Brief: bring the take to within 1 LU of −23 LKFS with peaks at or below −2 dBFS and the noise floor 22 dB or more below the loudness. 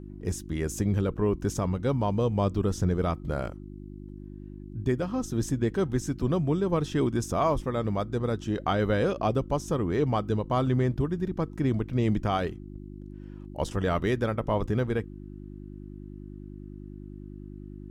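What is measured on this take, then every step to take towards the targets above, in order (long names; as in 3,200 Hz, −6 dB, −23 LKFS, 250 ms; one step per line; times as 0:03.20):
mains hum 50 Hz; hum harmonics up to 350 Hz; level of the hum −40 dBFS; integrated loudness −28.0 LKFS; sample peak −13.5 dBFS; target loudness −23.0 LKFS
→ hum removal 50 Hz, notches 7
level +5 dB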